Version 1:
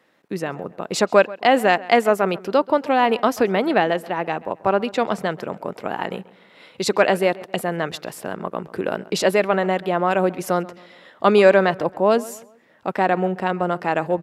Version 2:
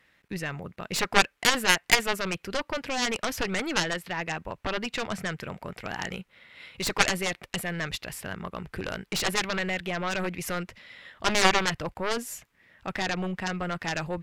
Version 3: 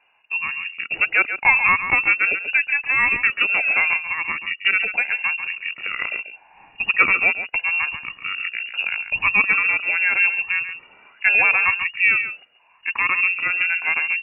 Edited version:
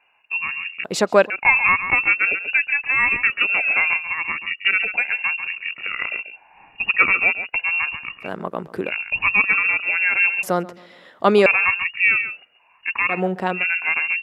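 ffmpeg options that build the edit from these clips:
-filter_complex "[0:a]asplit=4[s0][s1][s2][s3];[2:a]asplit=5[s4][s5][s6][s7][s8];[s4]atrim=end=0.842[s9];[s0]atrim=start=0.838:end=1.302[s10];[s5]atrim=start=1.298:end=8.3[s11];[s1]atrim=start=8.2:end=8.93[s12];[s6]atrim=start=8.83:end=10.432[s13];[s2]atrim=start=10.428:end=11.462[s14];[s7]atrim=start=11.458:end=13.22[s15];[s3]atrim=start=13.06:end=13.65[s16];[s8]atrim=start=13.49[s17];[s9][s10]acrossfade=d=0.004:c1=hsin:c2=hsin[s18];[s18][s11]acrossfade=d=0.004:c1=hsin:c2=hsin[s19];[s19][s12]acrossfade=d=0.1:c1=tri:c2=tri[s20];[s20][s13]acrossfade=d=0.1:c1=tri:c2=tri[s21];[s21][s14]acrossfade=d=0.004:c1=hsin:c2=hsin[s22];[s22][s15]acrossfade=d=0.004:c1=hsin:c2=hsin[s23];[s23][s16]acrossfade=d=0.16:c1=tri:c2=tri[s24];[s24][s17]acrossfade=d=0.16:c1=tri:c2=tri"

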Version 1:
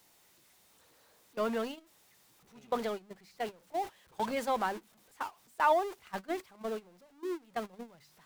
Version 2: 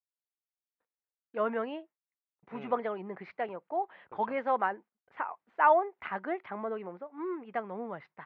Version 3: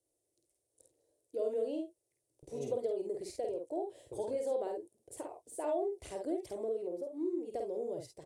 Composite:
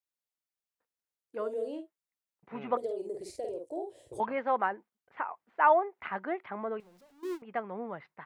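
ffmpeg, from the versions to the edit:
-filter_complex "[2:a]asplit=2[s0][s1];[1:a]asplit=4[s2][s3][s4][s5];[s2]atrim=end=1.51[s6];[s0]atrim=start=1.27:end=1.91[s7];[s3]atrim=start=1.67:end=2.772[s8];[s1]atrim=start=2.768:end=4.202[s9];[s4]atrim=start=4.198:end=6.802[s10];[0:a]atrim=start=6.798:end=7.422[s11];[s5]atrim=start=7.418[s12];[s6][s7]acrossfade=d=0.24:c1=tri:c2=tri[s13];[s13][s8]acrossfade=d=0.24:c1=tri:c2=tri[s14];[s14][s9]acrossfade=d=0.004:c1=hsin:c2=hsin[s15];[s15][s10]acrossfade=d=0.004:c1=hsin:c2=hsin[s16];[s16][s11]acrossfade=d=0.004:c1=hsin:c2=hsin[s17];[s17][s12]acrossfade=d=0.004:c1=hsin:c2=hsin"

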